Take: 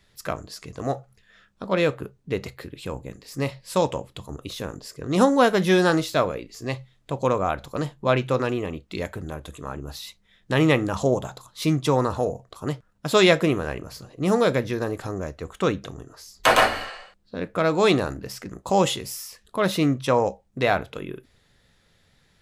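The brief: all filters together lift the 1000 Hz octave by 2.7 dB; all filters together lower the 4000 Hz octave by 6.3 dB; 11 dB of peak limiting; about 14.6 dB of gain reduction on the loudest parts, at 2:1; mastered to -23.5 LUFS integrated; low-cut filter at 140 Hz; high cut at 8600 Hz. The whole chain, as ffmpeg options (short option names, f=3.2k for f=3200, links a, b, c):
-af "highpass=140,lowpass=8.6k,equalizer=f=1k:t=o:g=4,equalizer=f=4k:t=o:g=-8.5,acompressor=threshold=-39dB:ratio=2,volume=14.5dB,alimiter=limit=-10dB:level=0:latency=1"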